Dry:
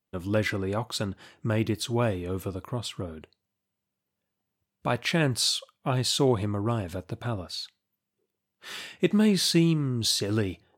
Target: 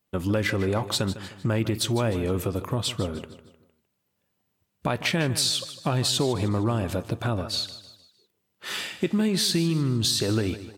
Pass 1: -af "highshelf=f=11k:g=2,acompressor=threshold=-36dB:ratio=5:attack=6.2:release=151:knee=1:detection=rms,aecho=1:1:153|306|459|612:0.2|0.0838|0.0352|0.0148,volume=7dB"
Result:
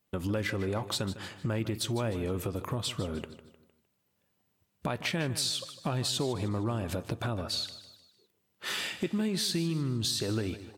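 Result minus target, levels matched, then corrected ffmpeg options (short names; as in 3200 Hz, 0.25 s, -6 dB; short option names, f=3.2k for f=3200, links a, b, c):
compressor: peak gain reduction +7 dB
-af "highshelf=f=11k:g=2,acompressor=threshold=-27.5dB:ratio=5:attack=6.2:release=151:knee=1:detection=rms,aecho=1:1:153|306|459|612:0.2|0.0838|0.0352|0.0148,volume=7dB"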